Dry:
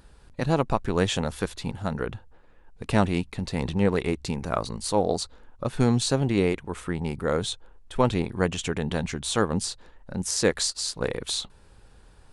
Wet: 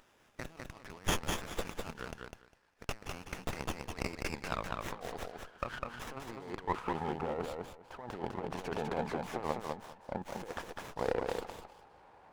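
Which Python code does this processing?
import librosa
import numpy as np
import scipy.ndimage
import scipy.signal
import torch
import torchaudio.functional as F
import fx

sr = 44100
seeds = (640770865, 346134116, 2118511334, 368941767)

p1 = fx.over_compress(x, sr, threshold_db=-28.0, ratio=-0.5)
p2 = p1 + fx.echo_feedback(p1, sr, ms=202, feedback_pct=17, wet_db=-4.0, dry=0)
p3 = fx.filter_sweep_bandpass(p2, sr, from_hz=4100.0, to_hz=820.0, start_s=3.19, end_s=7.1, q=2.3)
p4 = fx.running_max(p3, sr, window=9)
y = p4 * librosa.db_to_amplitude(4.5)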